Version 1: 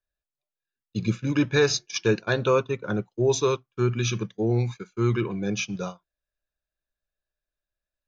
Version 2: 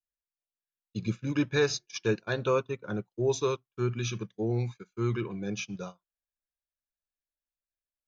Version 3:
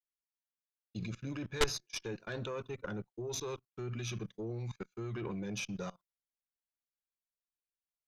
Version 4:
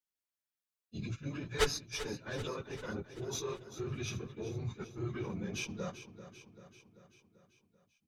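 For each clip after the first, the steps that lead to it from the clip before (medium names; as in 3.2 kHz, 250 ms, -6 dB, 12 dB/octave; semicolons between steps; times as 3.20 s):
in parallel at -2 dB: peak limiter -21.5 dBFS, peak gain reduction 11 dB; on the sum: upward expansion 1.5:1, over -39 dBFS; trim -6.5 dB
level held to a coarse grid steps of 22 dB; Chebyshev shaper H 3 -9 dB, 4 -11 dB, 5 -6 dB, 8 -14 dB, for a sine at -16 dBFS; trim -2 dB
phase randomisation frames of 50 ms; feedback delay 389 ms, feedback 58%, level -13 dB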